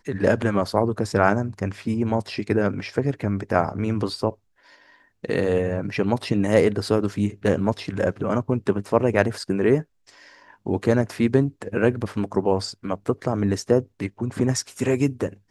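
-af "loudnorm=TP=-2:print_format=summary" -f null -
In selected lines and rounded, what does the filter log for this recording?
Input Integrated:    -23.7 LUFS
Input True Peak:      -2.2 dBTP
Input LRA:             1.9 LU
Input Threshold:     -34.0 LUFS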